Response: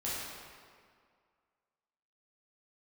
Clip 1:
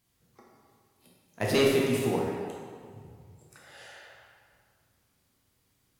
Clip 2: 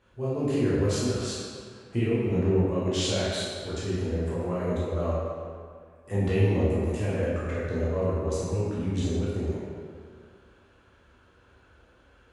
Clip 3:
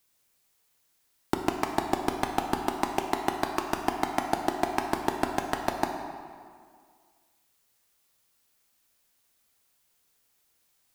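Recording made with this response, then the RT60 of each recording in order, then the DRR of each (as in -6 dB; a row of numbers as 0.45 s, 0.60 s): 2; 2.0 s, 2.1 s, 2.0 s; -4.0 dB, -9.0 dB, 3.0 dB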